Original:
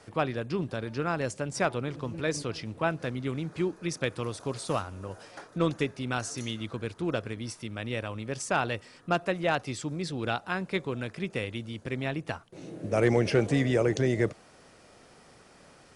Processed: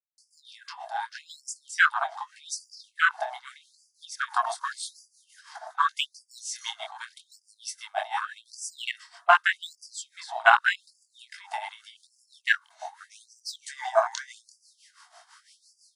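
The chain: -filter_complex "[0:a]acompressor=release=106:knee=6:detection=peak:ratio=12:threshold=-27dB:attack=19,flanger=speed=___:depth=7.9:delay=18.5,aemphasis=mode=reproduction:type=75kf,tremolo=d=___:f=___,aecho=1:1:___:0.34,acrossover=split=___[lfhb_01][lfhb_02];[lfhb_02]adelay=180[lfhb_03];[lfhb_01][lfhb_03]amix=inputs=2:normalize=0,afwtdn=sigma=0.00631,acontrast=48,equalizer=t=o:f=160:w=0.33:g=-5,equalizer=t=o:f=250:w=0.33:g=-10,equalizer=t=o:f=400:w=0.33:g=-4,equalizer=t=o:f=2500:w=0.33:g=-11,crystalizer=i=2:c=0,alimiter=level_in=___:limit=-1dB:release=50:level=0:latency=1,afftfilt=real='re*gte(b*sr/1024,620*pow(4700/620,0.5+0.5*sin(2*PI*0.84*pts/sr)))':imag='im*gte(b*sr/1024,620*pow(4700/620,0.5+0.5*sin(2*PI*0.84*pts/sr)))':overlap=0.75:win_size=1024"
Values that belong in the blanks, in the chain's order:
0.53, 0.78, 6, 1.9, 260, 23dB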